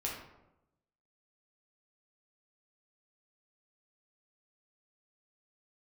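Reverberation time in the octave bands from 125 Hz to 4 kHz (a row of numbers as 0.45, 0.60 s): 1.1, 1.0, 0.95, 0.85, 0.65, 0.50 s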